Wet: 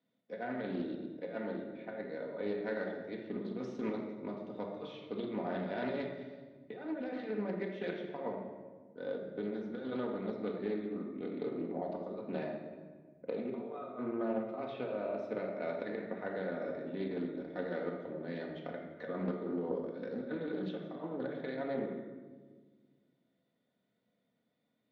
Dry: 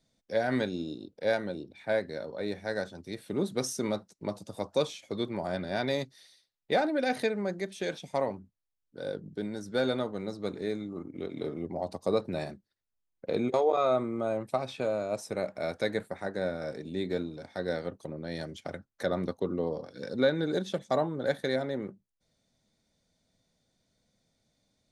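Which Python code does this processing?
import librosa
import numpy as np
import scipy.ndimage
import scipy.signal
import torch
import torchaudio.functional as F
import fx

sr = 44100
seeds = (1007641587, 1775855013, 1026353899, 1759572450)

y = fx.over_compress(x, sr, threshold_db=-31.0, ratio=-0.5)
y = fx.cheby_harmonics(y, sr, harmonics=(3,), levels_db=(-21,), full_scale_db=-16.0)
y = fx.cabinet(y, sr, low_hz=310.0, low_slope=12, high_hz=2600.0, hz=(310.0, 510.0, 780.0, 1100.0, 1600.0, 2300.0), db=(-3, -6, -9, -5, -7, -8))
y = fx.room_shoebox(y, sr, seeds[0], volume_m3=1400.0, walls='mixed', distance_m=1.9)
y = fx.doppler_dist(y, sr, depth_ms=0.23)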